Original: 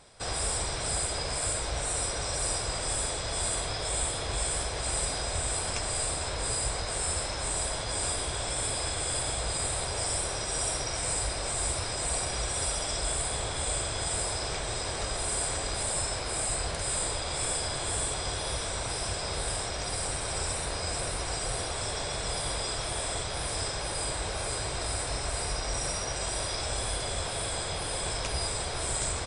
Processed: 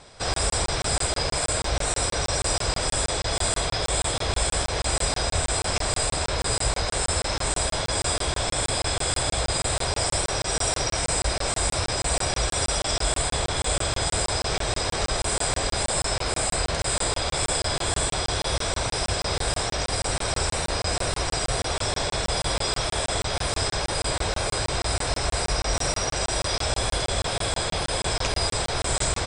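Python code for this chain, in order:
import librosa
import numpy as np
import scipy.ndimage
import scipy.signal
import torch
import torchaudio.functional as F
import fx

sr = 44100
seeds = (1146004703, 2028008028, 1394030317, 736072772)

y = scipy.signal.sosfilt(scipy.signal.butter(4, 8000.0, 'lowpass', fs=sr, output='sos'), x)
y = fx.buffer_crackle(y, sr, first_s=0.34, period_s=0.16, block=1024, kind='zero')
y = y * 10.0 ** (7.5 / 20.0)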